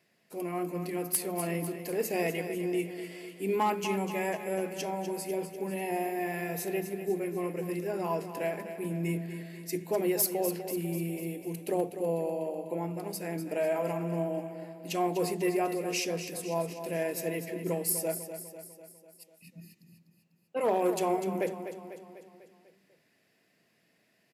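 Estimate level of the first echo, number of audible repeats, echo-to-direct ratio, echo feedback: −10.0 dB, 5, −8.5 dB, 55%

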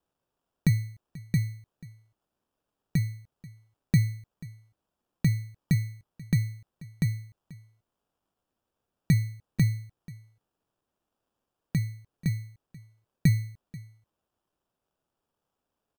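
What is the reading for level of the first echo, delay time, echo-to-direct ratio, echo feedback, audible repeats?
−20.5 dB, 486 ms, −20.5 dB, repeats not evenly spaced, 1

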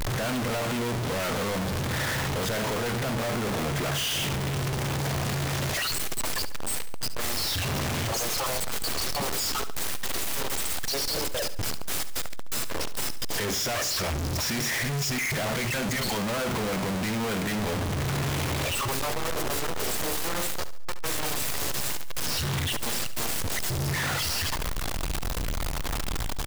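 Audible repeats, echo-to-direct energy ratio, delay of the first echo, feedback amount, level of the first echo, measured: 3, −13.0 dB, 71 ms, 42%, −14.0 dB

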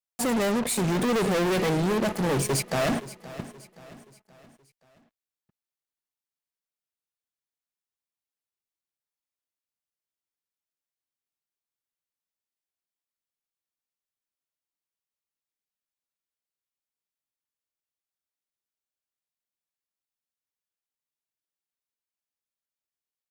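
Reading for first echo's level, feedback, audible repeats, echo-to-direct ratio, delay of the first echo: −16.5 dB, 45%, 3, −15.5 dB, 524 ms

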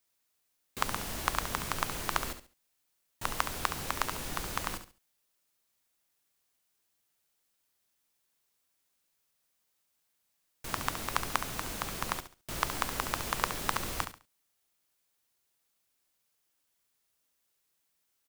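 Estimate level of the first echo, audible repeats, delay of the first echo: −10.0 dB, 3, 69 ms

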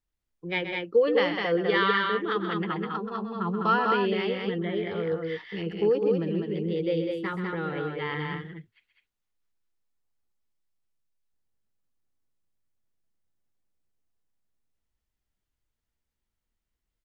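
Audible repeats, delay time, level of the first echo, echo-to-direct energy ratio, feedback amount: 2, 129 ms, −9.0 dB, −2.0 dB, repeats not evenly spaced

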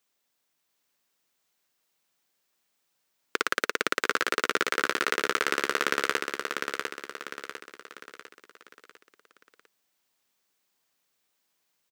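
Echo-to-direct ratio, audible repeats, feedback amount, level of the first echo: −4.0 dB, 5, 44%, −5.0 dB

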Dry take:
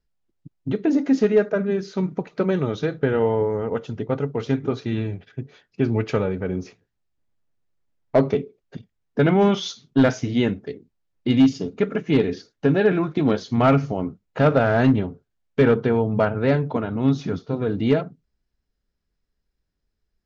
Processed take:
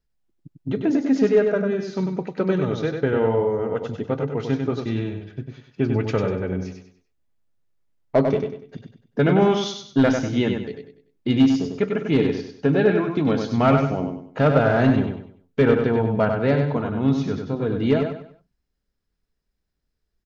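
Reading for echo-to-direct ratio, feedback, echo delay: −5.0 dB, 34%, 97 ms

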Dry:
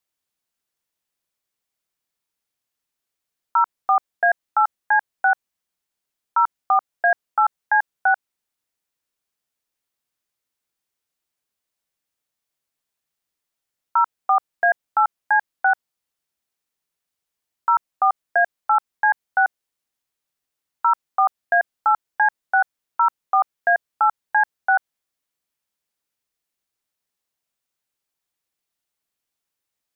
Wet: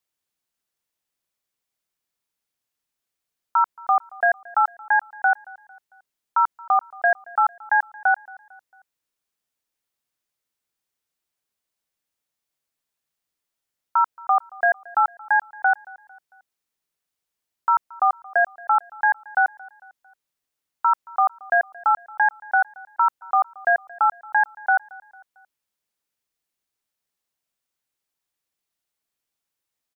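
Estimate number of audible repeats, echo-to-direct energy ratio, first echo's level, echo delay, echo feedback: 2, −22.0 dB, −23.0 dB, 225 ms, 48%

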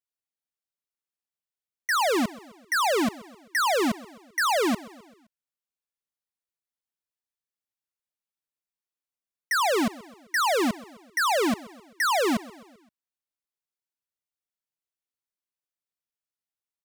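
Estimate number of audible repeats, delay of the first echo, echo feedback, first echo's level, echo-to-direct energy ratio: 3, 130 ms, 54%, −20.5 dB, −19.0 dB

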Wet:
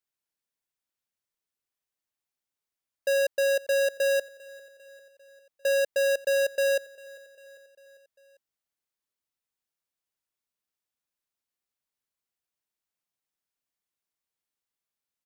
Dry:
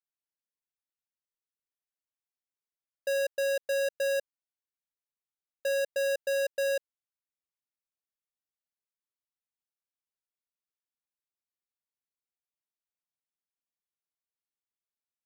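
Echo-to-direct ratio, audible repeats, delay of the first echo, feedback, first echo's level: −20.0 dB, 3, 398 ms, 59%, −22.0 dB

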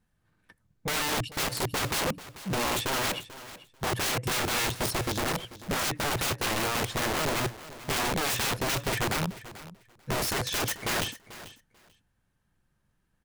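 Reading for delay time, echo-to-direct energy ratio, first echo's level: 440 ms, −16.0 dB, −16.0 dB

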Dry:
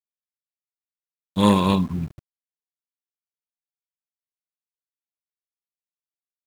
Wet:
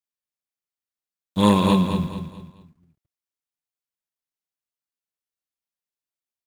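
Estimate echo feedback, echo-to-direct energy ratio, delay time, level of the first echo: 36%, −7.0 dB, 217 ms, −7.5 dB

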